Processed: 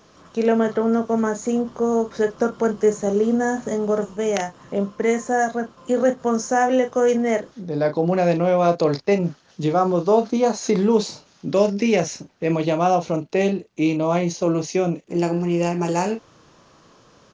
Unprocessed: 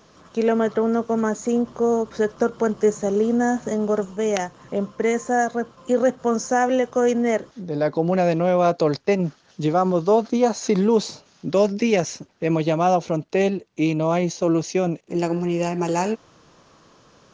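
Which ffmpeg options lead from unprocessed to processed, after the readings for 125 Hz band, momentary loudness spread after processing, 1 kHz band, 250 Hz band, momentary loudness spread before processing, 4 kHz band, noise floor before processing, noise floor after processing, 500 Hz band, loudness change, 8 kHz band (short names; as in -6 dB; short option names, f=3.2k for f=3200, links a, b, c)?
+0.5 dB, 6 LU, +0.5 dB, +0.5 dB, 6 LU, +0.5 dB, -56 dBFS, -54 dBFS, +0.5 dB, +0.5 dB, +0.5 dB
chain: -filter_complex "[0:a]asplit=2[a][b];[b]adelay=35,volume=-8.5dB[c];[a][c]amix=inputs=2:normalize=0"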